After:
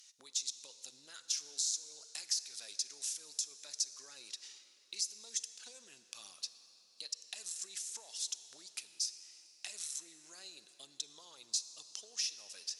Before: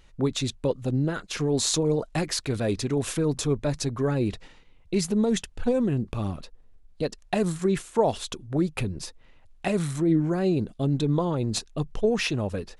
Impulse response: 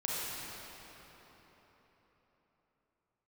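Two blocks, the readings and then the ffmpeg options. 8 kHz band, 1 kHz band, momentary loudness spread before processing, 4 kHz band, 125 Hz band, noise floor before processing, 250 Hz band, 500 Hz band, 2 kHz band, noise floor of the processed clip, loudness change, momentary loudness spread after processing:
-2.0 dB, -29.5 dB, 9 LU, -5.5 dB, under -40 dB, -54 dBFS, under -40 dB, -38.5 dB, -18.0 dB, -65 dBFS, -13.0 dB, 16 LU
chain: -filter_complex "[0:a]aemphasis=mode=production:type=riaa,acompressor=threshold=-35dB:ratio=6,bandpass=f=5.6k:t=q:w=3:csg=0,asplit=2[a][b];[1:a]atrim=start_sample=2205[c];[b][c]afir=irnorm=-1:irlink=0,volume=-15dB[d];[a][d]amix=inputs=2:normalize=0,volume=4.5dB"

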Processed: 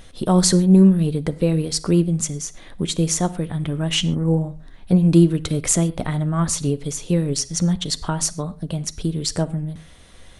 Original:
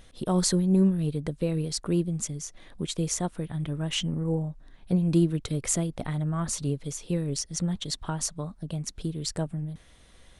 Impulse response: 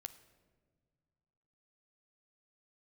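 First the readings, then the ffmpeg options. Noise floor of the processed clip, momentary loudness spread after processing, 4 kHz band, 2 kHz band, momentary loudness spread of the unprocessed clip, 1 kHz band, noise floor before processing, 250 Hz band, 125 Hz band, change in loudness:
-44 dBFS, 13 LU, +8.5 dB, +8.5 dB, 11 LU, +8.5 dB, -54 dBFS, +9.0 dB, +8.5 dB, +8.5 dB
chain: -filter_complex "[0:a]asplit=2[a][b];[1:a]atrim=start_sample=2205,afade=t=out:st=0.19:d=0.01,atrim=end_sample=8820[c];[b][c]afir=irnorm=-1:irlink=0,volume=13.5dB[d];[a][d]amix=inputs=2:normalize=0,volume=-3dB"

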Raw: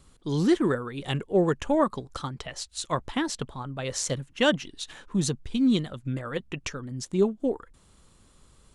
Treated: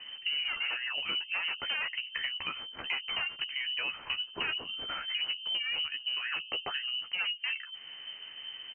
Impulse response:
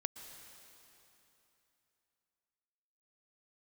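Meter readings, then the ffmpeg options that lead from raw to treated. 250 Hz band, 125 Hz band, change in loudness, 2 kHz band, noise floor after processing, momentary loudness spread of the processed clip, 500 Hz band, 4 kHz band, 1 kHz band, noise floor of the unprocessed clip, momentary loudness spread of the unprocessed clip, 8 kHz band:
-30.5 dB, -30.0 dB, -5.0 dB, +3.0 dB, -49 dBFS, 8 LU, -24.0 dB, +7.0 dB, -10.0 dB, -59 dBFS, 12 LU, under -40 dB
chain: -filter_complex "[0:a]asplit=2[a][b];[b]aeval=exprs='0.335*sin(PI/2*6.31*val(0)/0.335)':c=same,volume=-11dB[c];[a][c]amix=inputs=2:normalize=0,bandreject=f=60:t=h:w=6,bandreject=f=120:t=h:w=6,bandreject=f=180:t=h:w=6,bandreject=f=240:t=h:w=6,bandreject=f=300:t=h:w=6,bandreject=f=360:t=h:w=6,bandreject=f=420:t=h:w=6,bandreject=f=480:t=h:w=6,asplit=2[d][e];[e]adelay=13,volume=-5dB[f];[d][f]amix=inputs=2:normalize=0,lowpass=f=2.6k:t=q:w=0.5098,lowpass=f=2.6k:t=q:w=0.6013,lowpass=f=2.6k:t=q:w=0.9,lowpass=f=2.6k:t=q:w=2.563,afreqshift=-3100,acompressor=threshold=-34dB:ratio=4"

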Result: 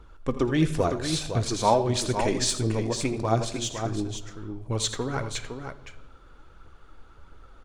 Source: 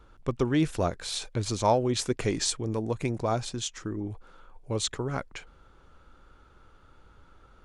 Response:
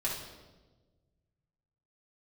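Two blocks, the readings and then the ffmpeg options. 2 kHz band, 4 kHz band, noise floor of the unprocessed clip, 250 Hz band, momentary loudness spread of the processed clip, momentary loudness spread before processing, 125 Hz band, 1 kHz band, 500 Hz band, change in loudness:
+3.5 dB, +3.0 dB, -58 dBFS, +2.5 dB, 15 LU, 11 LU, +3.5 dB, +4.0 dB, +2.5 dB, +2.5 dB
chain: -filter_complex "[0:a]aphaser=in_gain=1:out_gain=1:delay=4.5:decay=0.44:speed=1.5:type=triangular,aecho=1:1:81|86|509:0.2|0.133|0.422,asplit=2[a][b];[1:a]atrim=start_sample=2205[c];[b][c]afir=irnorm=-1:irlink=0,volume=-15dB[d];[a][d]amix=inputs=2:normalize=0"

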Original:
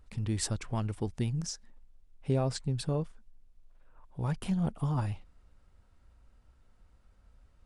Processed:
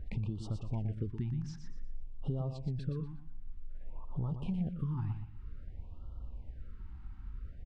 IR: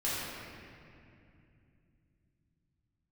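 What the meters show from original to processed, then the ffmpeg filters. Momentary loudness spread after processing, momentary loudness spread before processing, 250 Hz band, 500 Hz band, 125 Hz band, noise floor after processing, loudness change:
15 LU, 12 LU, -4.5 dB, -10.0 dB, -3.0 dB, -48 dBFS, -6.0 dB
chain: -filter_complex "[0:a]lowpass=2.8k,lowshelf=f=280:g=9.5,acompressor=threshold=-42dB:ratio=6,asplit=2[a][b];[b]aecho=0:1:120|240|360|480:0.422|0.122|0.0355|0.0103[c];[a][c]amix=inputs=2:normalize=0,afftfilt=real='re*(1-between(b*sr/1024,490*pow(2000/490,0.5+0.5*sin(2*PI*0.53*pts/sr))/1.41,490*pow(2000/490,0.5+0.5*sin(2*PI*0.53*pts/sr))*1.41))':imag='im*(1-between(b*sr/1024,490*pow(2000/490,0.5+0.5*sin(2*PI*0.53*pts/sr))/1.41,490*pow(2000/490,0.5+0.5*sin(2*PI*0.53*pts/sr))*1.41))':win_size=1024:overlap=0.75,volume=7dB"

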